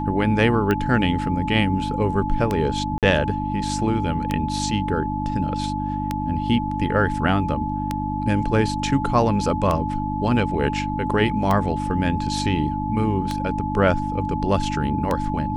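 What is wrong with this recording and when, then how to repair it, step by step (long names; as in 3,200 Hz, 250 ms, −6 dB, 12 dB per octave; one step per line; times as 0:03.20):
mains hum 50 Hz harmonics 6 −27 dBFS
scratch tick 33 1/3 rpm −9 dBFS
whistle 860 Hz −27 dBFS
0:02.98–0:03.03: drop-out 47 ms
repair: click removal
notch filter 860 Hz, Q 30
hum removal 50 Hz, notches 6
repair the gap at 0:02.98, 47 ms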